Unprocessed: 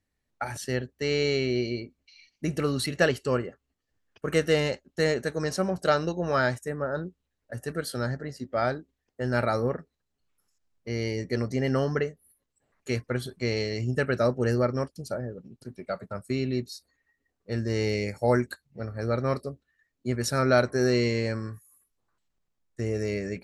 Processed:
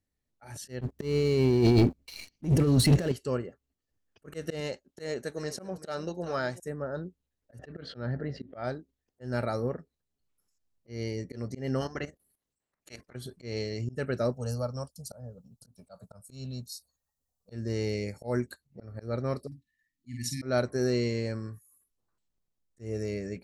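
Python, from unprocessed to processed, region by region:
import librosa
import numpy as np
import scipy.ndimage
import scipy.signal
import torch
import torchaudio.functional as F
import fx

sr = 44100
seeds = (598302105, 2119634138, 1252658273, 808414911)

y = fx.chain(x, sr, fx.over_compress(threshold_db=-35.0, ratio=-1.0),
    fx.low_shelf(hz=480.0, db=10.5),
    fx.leveller(passes=3), at=(0.81, 3.12))
y = fx.chain(y, sr, fx.low_shelf(hz=190.0, db=-8.0),
    fx.echo_single(ms=385, db=-16.0), at=(4.6, 6.6))
y = fx.chain(y, sr, fx.lowpass(hz=3400.0, slope=24),
    fx.env_flatten(amount_pct=50), at=(7.59, 8.64))
y = fx.spec_clip(y, sr, under_db=18, at=(11.8, 13.14), fade=0.02)
y = fx.level_steps(y, sr, step_db=14, at=(11.8, 13.14), fade=0.02)
y = fx.chain(y, sr, fx.high_shelf(hz=4800.0, db=10.0),
    fx.fixed_phaser(hz=830.0, stages=4), at=(14.32, 17.52))
y = fx.chain(y, sr, fx.brickwall_bandstop(low_hz=330.0, high_hz=1700.0),
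    fx.low_shelf(hz=180.0, db=-4.5),
    fx.doubler(ms=49.0, db=-6), at=(19.47, 20.42))
y = fx.peak_eq(y, sr, hz=1700.0, db=-5.5, octaves=2.4)
y = fx.auto_swell(y, sr, attack_ms=148.0)
y = y * librosa.db_to_amplitude(-3.0)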